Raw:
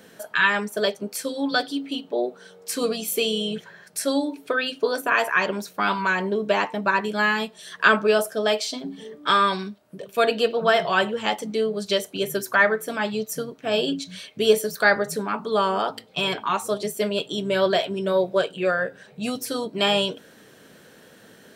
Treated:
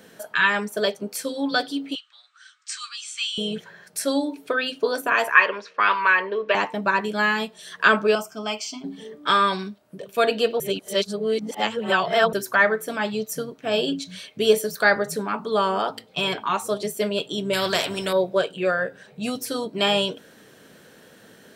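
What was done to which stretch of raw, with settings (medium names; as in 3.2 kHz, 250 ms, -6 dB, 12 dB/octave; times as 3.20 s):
1.95–3.38 s: Chebyshev band-pass 1.2–8.5 kHz, order 5
5.35–6.55 s: cabinet simulation 480–4800 Hz, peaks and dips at 480 Hz +7 dB, 740 Hz -7 dB, 1.1 kHz +8 dB, 1.8 kHz +8 dB, 2.6 kHz +7 dB, 3.9 kHz -4 dB
8.15–8.84 s: static phaser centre 2.6 kHz, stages 8
10.60–12.33 s: reverse
17.53–18.13 s: spectrum-flattening compressor 2:1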